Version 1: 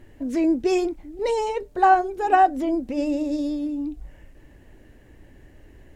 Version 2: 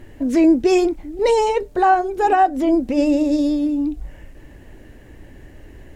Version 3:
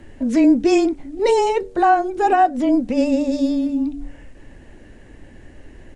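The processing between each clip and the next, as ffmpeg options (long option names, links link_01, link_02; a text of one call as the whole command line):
ffmpeg -i in.wav -af "alimiter=limit=-14dB:level=0:latency=1:release=266,volume=7.5dB" out.wav
ffmpeg -i in.wav -af "aresample=22050,aresample=44100,afreqshift=-17,bandreject=frequency=94.95:width_type=h:width=4,bandreject=frequency=189.9:width_type=h:width=4,bandreject=frequency=284.85:width_type=h:width=4,bandreject=frequency=379.8:width_type=h:width=4,bandreject=frequency=474.75:width_type=h:width=4" out.wav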